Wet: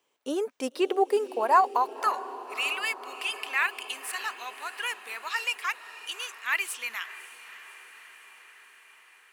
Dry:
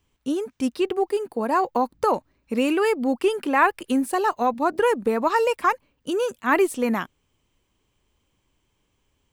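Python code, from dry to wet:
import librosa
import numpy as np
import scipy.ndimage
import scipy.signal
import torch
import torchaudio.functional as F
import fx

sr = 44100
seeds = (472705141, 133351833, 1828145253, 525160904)

y = fx.filter_sweep_highpass(x, sr, from_hz=510.0, to_hz=2400.0, start_s=1.18, end_s=2.45, q=1.6)
y = fx.echo_diffused(y, sr, ms=582, feedback_pct=66, wet_db=-15.0)
y = y * librosa.db_to_amplitude(-1.0)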